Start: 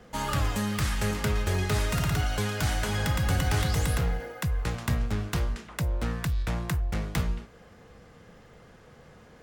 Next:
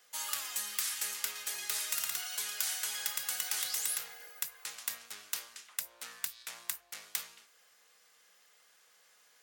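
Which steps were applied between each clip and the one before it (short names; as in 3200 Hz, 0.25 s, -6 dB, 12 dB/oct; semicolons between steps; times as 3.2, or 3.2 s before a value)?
HPF 610 Hz 6 dB/oct; differentiator; gain +3.5 dB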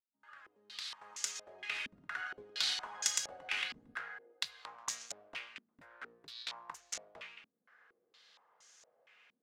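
opening faded in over 2.17 s; in parallel at -10.5 dB: bit-crush 5-bit; on the sum: stepped low-pass 4.3 Hz 240–6500 Hz; gain -2 dB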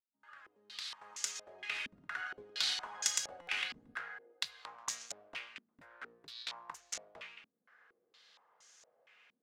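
stuck buffer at 3.41, samples 256, times 10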